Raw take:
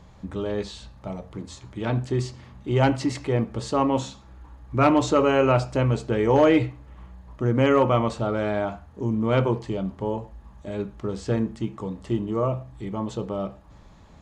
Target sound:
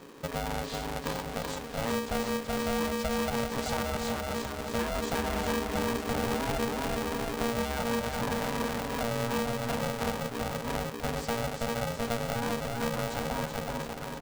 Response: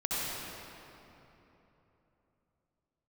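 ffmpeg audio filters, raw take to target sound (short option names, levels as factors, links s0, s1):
-filter_complex "[0:a]acrossover=split=150[s0][s1];[s1]acompressor=threshold=0.0282:ratio=4[s2];[s0][s2]amix=inputs=2:normalize=0,aecho=1:1:380|722|1030|1307|1556:0.631|0.398|0.251|0.158|0.1,acompressor=threshold=0.0447:ratio=6,asettb=1/sr,asplit=3[s3][s4][s5];[s3]atrim=end=4.984[s6];[s4]atrim=start=4.98:end=7.5,asetpts=PTS-STARTPTS,afade=t=in:d=0.004:c=qsin,afade=t=out:st=2.516:d=0.004:c=qsin,aeval=exprs='val(0)+0.0112*(sin(2*PI*50*n/s)+sin(2*PI*2*50*n/s)/2+sin(2*PI*3*50*n/s)/3+sin(2*PI*4*50*n/s)/4+sin(2*PI*5*50*n/s)/5)':c=same[s7];[s5]atrim=start=7.496[s8];[s6][s7]acrossfade=d=0.004:c1=hsin:c2=qsin[s9];[s9][s8]acrossfade=d=0.004:c1=qsin:c2=hsin,aeval=exprs='val(0)*sgn(sin(2*PI*350*n/s))':c=same"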